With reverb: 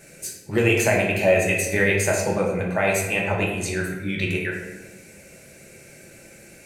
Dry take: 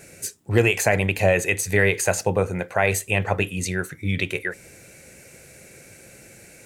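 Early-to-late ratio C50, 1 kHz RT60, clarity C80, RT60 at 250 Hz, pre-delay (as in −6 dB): 3.5 dB, 1.0 s, 5.5 dB, 1.8 s, 3 ms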